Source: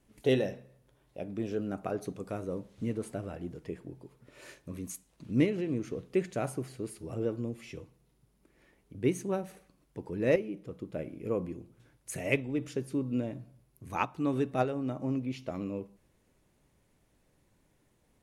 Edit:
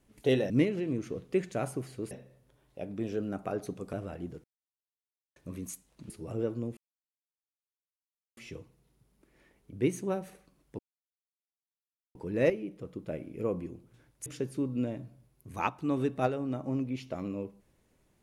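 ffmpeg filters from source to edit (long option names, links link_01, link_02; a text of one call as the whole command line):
ffmpeg -i in.wav -filter_complex "[0:a]asplit=10[link_01][link_02][link_03][link_04][link_05][link_06][link_07][link_08][link_09][link_10];[link_01]atrim=end=0.502[link_11];[link_02]atrim=start=5.308:end=6.922[link_12];[link_03]atrim=start=0.498:end=2.322[link_13];[link_04]atrim=start=3.138:end=3.65,asetpts=PTS-STARTPTS,afade=type=out:start_time=0.508:duration=0.004:curve=hsin[link_14];[link_05]atrim=start=3.65:end=4.57,asetpts=PTS-STARTPTS,volume=0[link_15];[link_06]atrim=start=4.57:end=5.312,asetpts=PTS-STARTPTS,afade=type=in:duration=0.004:curve=hsin[link_16];[link_07]atrim=start=6.918:end=7.59,asetpts=PTS-STARTPTS,afade=type=out:start_time=0.668:duration=0.004:curve=hsin,apad=pad_dur=1.6[link_17];[link_08]atrim=start=7.59:end=10.01,asetpts=PTS-STARTPTS,afade=type=in:duration=0.004:curve=hsin,afade=type=out:start_time=2.416:duration=0.004:curve=hsin,apad=pad_dur=1.36[link_18];[link_09]atrim=start=10.01:end=12.122,asetpts=PTS-STARTPTS,afade=type=in:duration=0.004:curve=hsin[link_19];[link_10]atrim=start=12.618[link_20];[link_11][link_12]acrossfade=duration=0.004:curve1=hsin:curve2=hsin[link_21];[link_21][link_13]acrossfade=duration=0.004:curve1=hsin:curve2=hsin[link_22];[link_14][link_15][link_16]concat=n=3:v=0:a=1[link_23];[link_22][link_23]acrossfade=duration=0.004:curve1=hsin:curve2=hsin[link_24];[link_17][link_18][link_19]concat=n=3:v=0:a=1[link_25];[link_24][link_25]acrossfade=duration=0.004:curve1=hsin:curve2=hsin[link_26];[link_26][link_20]acrossfade=duration=0.004:curve1=hsin:curve2=hsin" out.wav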